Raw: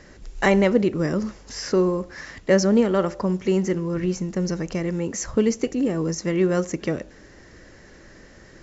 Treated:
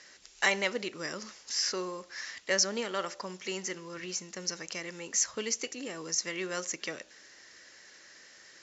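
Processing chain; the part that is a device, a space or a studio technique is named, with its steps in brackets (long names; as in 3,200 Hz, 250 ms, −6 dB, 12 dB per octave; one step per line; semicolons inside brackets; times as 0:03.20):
piezo pickup straight into a mixer (low-pass filter 5,500 Hz 12 dB per octave; first difference)
level +8.5 dB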